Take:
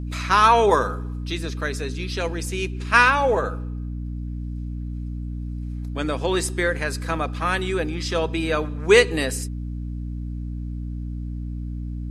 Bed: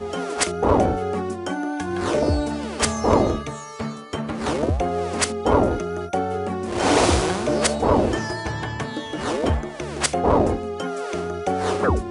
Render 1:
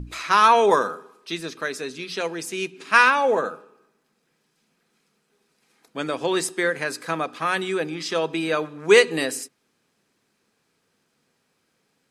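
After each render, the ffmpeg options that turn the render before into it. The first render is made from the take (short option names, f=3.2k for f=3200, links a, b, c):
-af "bandreject=f=60:t=h:w=6,bandreject=f=120:t=h:w=6,bandreject=f=180:t=h:w=6,bandreject=f=240:t=h:w=6,bandreject=f=300:t=h:w=6"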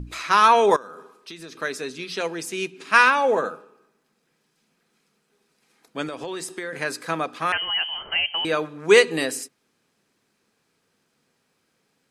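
-filter_complex "[0:a]asettb=1/sr,asplit=3[a][b][c];[a]atrim=end=0.764[d];[b]atrim=start=0.76:end=1.54,asetpts=PTS-STARTPTS,afade=t=in:d=0.004:c=qsin,afade=t=out:st=0.776:d=0.004:c=qsin,acompressor=threshold=-35dB:ratio=8:attack=3.2:release=140:knee=1:detection=peak[e];[c]atrim=start=1.536[f];[d][e]acrossfade=d=0.004:c1=hsin:c2=qsin[g];[g][f]acrossfade=d=0.004:c1=qsin:c2=hsin,asettb=1/sr,asplit=3[h][i][j];[h]atrim=end=6.064[k];[i]atrim=start=6.06:end=6.73,asetpts=PTS-STARTPTS,afade=t=in:d=0.004:c=qsin,afade=t=out:st=0.666:d=0.004:c=qsin,acompressor=threshold=-28dB:ratio=6:attack=3.2:release=140:knee=1:detection=peak[l];[j]atrim=start=6.726[m];[k][l]acrossfade=d=0.004:c1=hsin:c2=qsin[n];[n][m]acrossfade=d=0.004:c1=qsin:c2=hsin,asettb=1/sr,asplit=3[o][p][q];[o]atrim=end=7.524[r];[p]atrim=start=7.52:end=8.45,asetpts=PTS-STARTPTS,afade=t=in:d=0.004:c=qsin,afade=t=out:st=0.926:d=0.004:c=qsin,lowpass=f=2.8k:t=q:w=0.5098,lowpass=f=2.8k:t=q:w=0.6013,lowpass=f=2.8k:t=q:w=0.9,lowpass=f=2.8k:t=q:w=2.563,afreqshift=-3300[s];[q]atrim=start=8.446[t];[r][s]acrossfade=d=0.004:c1=hsin:c2=qsin[u];[u][t]acrossfade=d=0.004:c1=qsin:c2=hsin"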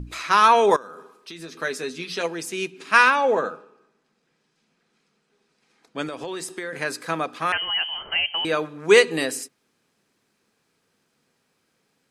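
-filter_complex "[0:a]asettb=1/sr,asplit=3[a][b][c];[a]atrim=end=1.344[d];[b]atrim=start=1.34:end=2.26,asetpts=PTS-STARTPTS,afade=t=in:d=0.004:c=qsin,afade=t=out:st=0.916:d=0.004:c=qsin,asplit=2[e][f];[f]adelay=12,volume=-7dB[g];[e][g]amix=inputs=2:normalize=0,atrim=end_sample=40572[h];[c]atrim=start=2.256[i];[d][h]acrossfade=d=0.004:c1=hsin:c2=qsin[j];[j][i]acrossfade=d=0.004:c1=qsin:c2=hsin,asettb=1/sr,asplit=3[k][l][m];[k]atrim=end=3.164[n];[l]atrim=start=3.16:end=5.98,asetpts=PTS-STARTPTS,afade=t=in:d=0.004:c=qsin,afade=t=out:st=2.816:d=0.004:c=qsin,lowpass=6.9k[o];[m]atrim=start=5.976[p];[n][o]acrossfade=d=0.004:c1=hsin:c2=qsin[q];[q][p]acrossfade=d=0.004:c1=qsin:c2=hsin"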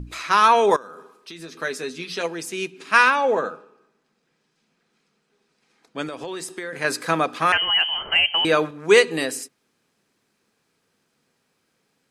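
-filter_complex "[0:a]asettb=1/sr,asplit=3[a][b][c];[a]atrim=end=6.844[d];[b]atrim=start=6.84:end=8.71,asetpts=PTS-STARTPTS,afade=t=in:d=0.004:c=qsin,afade=t=out:st=1.866:d=0.004:c=qsin,acontrast=30[e];[c]atrim=start=8.706[f];[d][e]acrossfade=d=0.004:c1=hsin:c2=qsin[g];[g][f]acrossfade=d=0.004:c1=qsin:c2=hsin"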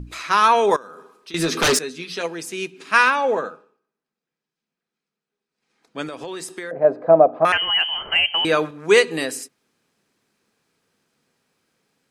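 -filter_complex "[0:a]asettb=1/sr,asplit=3[a][b][c];[a]atrim=end=1.344[d];[b]atrim=start=1.34:end=1.79,asetpts=PTS-STARTPTS,afade=t=in:d=0.004:c=qsin,afade=t=out:st=0.446:d=0.004:c=qsin,aeval=exprs='0.224*sin(PI/2*5.01*val(0)/0.224)':c=same[e];[c]atrim=start=1.786[f];[d][e]acrossfade=d=0.004:c1=hsin:c2=qsin[g];[g][f]acrossfade=d=0.004:c1=qsin:c2=hsin,asettb=1/sr,asplit=3[h][i][j];[h]atrim=end=6.714[k];[i]atrim=start=6.71:end=7.45,asetpts=PTS-STARTPTS,afade=t=in:d=0.004:c=qsin,afade=t=out:st=0.736:d=0.004:c=qsin,lowpass=f=650:t=q:w=7.1[l];[j]atrim=start=7.446[m];[k][l]acrossfade=d=0.004:c1=hsin:c2=qsin[n];[n][m]acrossfade=d=0.004:c1=qsin:c2=hsin,asplit=3[o][p][q];[o]atrim=end=3.81,asetpts=PTS-STARTPTS,afade=t=out:st=3.33:d=0.48:silence=0.149624[r];[p]atrim=start=3.81:end=5.51,asetpts=PTS-STARTPTS,volume=-16.5dB[s];[q]atrim=start=5.51,asetpts=PTS-STARTPTS,afade=t=in:d=0.48:silence=0.149624[t];[r][s][t]concat=n=3:v=0:a=1"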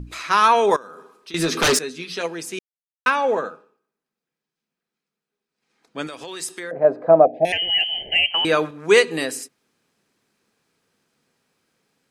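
-filter_complex "[0:a]asettb=1/sr,asplit=3[a][b][c];[a]atrim=end=6.074[d];[b]atrim=start=6.07:end=6.6,asetpts=PTS-STARTPTS,afade=t=in:d=0.004:c=qsin,afade=t=out:st=0.526:d=0.004:c=qsin,tiltshelf=f=1.5k:g=-5[e];[c]atrim=start=6.596[f];[d][e]acrossfade=d=0.004:c1=hsin:c2=qsin[g];[g][f]acrossfade=d=0.004:c1=qsin:c2=hsin,asettb=1/sr,asplit=3[h][i][j];[h]atrim=end=7.254[k];[i]atrim=start=7.25:end=8.31,asetpts=PTS-STARTPTS,afade=t=in:d=0.004:c=qsin,afade=t=out:st=1.056:d=0.004:c=qsin,asuperstop=centerf=1200:order=8:qfactor=1.1[l];[j]atrim=start=8.306[m];[k][l]acrossfade=d=0.004:c1=hsin:c2=qsin[n];[n][m]acrossfade=d=0.004:c1=qsin:c2=hsin,asplit=3[o][p][q];[o]atrim=end=2.59,asetpts=PTS-STARTPTS,afade=t=out:st=2.586:d=0.004:c=hsin[r];[p]atrim=start=2.59:end=3.06,asetpts=PTS-STARTPTS,volume=0[s];[q]atrim=start=3.06,asetpts=PTS-STARTPTS,afade=t=in:d=0.004:c=hsin[t];[r][s][t]concat=n=3:v=0:a=1"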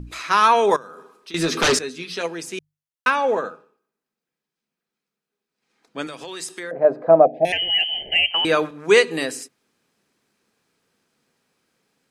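-filter_complex "[0:a]acrossover=split=9100[a][b];[b]acompressor=threshold=-43dB:ratio=4:attack=1:release=60[c];[a][c]amix=inputs=2:normalize=0,bandreject=f=50:t=h:w=6,bandreject=f=100:t=h:w=6,bandreject=f=150:t=h:w=6"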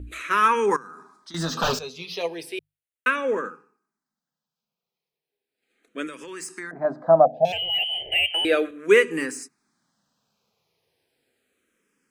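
-filter_complex "[0:a]acrossover=split=2700[a][b];[b]asoftclip=type=tanh:threshold=-28.5dB[c];[a][c]amix=inputs=2:normalize=0,asplit=2[d][e];[e]afreqshift=-0.35[f];[d][f]amix=inputs=2:normalize=1"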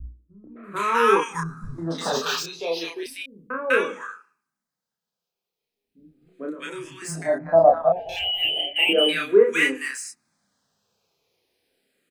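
-filter_complex "[0:a]asplit=2[a][b];[b]adelay=30,volume=-2dB[c];[a][c]amix=inputs=2:normalize=0,acrossover=split=170|1100[d][e][f];[e]adelay=440[g];[f]adelay=640[h];[d][g][h]amix=inputs=3:normalize=0"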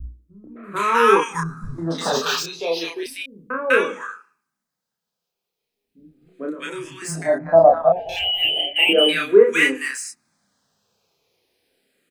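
-af "volume=3.5dB,alimiter=limit=-1dB:level=0:latency=1"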